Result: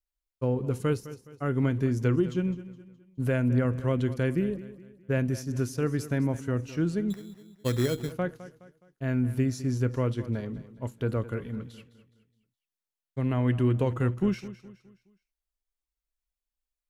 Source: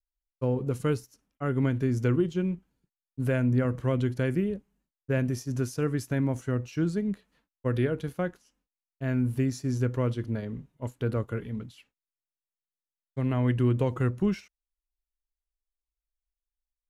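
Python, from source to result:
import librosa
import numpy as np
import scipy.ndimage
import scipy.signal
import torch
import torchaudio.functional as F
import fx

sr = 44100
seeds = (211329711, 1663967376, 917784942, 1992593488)

y = fx.echo_feedback(x, sr, ms=209, feedback_pct=40, wet_db=-15.5)
y = fx.sample_hold(y, sr, seeds[0], rate_hz=3700.0, jitter_pct=0, at=(7.1, 8.12))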